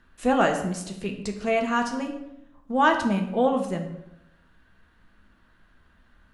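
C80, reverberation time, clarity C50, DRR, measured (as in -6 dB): 10.5 dB, 0.85 s, 8.5 dB, 3.0 dB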